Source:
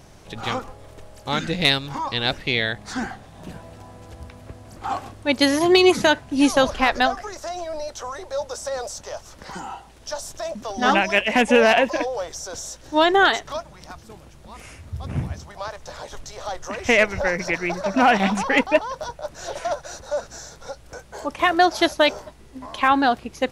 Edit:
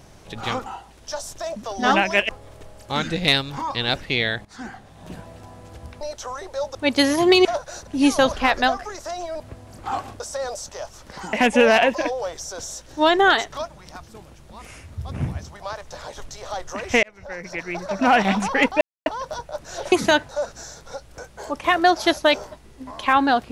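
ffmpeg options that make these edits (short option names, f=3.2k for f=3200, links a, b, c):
-filter_complex "[0:a]asplit=15[a][b][c][d][e][f][g][h][i][j][k][l][m][n][o];[a]atrim=end=0.662[p];[b]atrim=start=9.648:end=11.282[q];[c]atrim=start=0.658:end=2.82,asetpts=PTS-STARTPTS,afade=t=out:st=2.158:d=0.004:c=hsin:silence=0.16788[r];[d]atrim=start=2.82:end=4.382,asetpts=PTS-STARTPTS,afade=t=in:d=0.65:silence=0.16788[s];[e]atrim=start=7.778:end=8.522[t];[f]atrim=start=5.178:end=5.882[u];[g]atrim=start=19.618:end=20.042[v];[h]atrim=start=6.248:end=7.782[w];[i]atrim=start=4.378:end=5.182[x];[j]atrim=start=8.518:end=9.652[y];[k]atrim=start=11.278:end=16.98,asetpts=PTS-STARTPTS,afade=t=out:st=5.698:d=0.004:c=hsin[z];[l]atrim=start=16.98:end=18.76,asetpts=PTS-STARTPTS,afade=t=in:d=1.14,afade=t=out:st=1.776:d=0.004:c=hsin,apad=pad_dur=0.25[aa];[m]atrim=start=18.76:end=19.622,asetpts=PTS-STARTPTS,afade=t=in:d=0.004:c=hsin[ab];[n]atrim=start=5.878:end=6.252[ac];[o]atrim=start=20.038[ad];[p][q]acrossfade=d=0.004:c1=hsin:c2=hsin[ae];[r][s]concat=n=2:v=0:a=1[af];[ae][af]acrossfade=d=0.004:c1=hsin:c2=hsin[ag];[ag][t]acrossfade=d=0.004:c1=hsin:c2=hsin[ah];[ah][u]acrossfade=d=0.004:c1=hsin:c2=hsin[ai];[ai][v]acrossfade=d=0.004:c1=hsin:c2=hsin[aj];[aj][w]acrossfade=d=0.004:c1=hsin:c2=hsin[ak];[ak][x]acrossfade=d=0.004:c1=hsin:c2=hsin[al];[al][y]acrossfade=d=0.004:c1=hsin:c2=hsin[am];[z][aa][ab]concat=n=3:v=0:a=1[an];[am][an]acrossfade=d=0.004:c1=hsin:c2=hsin[ao];[ao][ac]acrossfade=d=0.004:c1=hsin:c2=hsin[ap];[ap][ad]acrossfade=d=0.004:c1=hsin:c2=hsin"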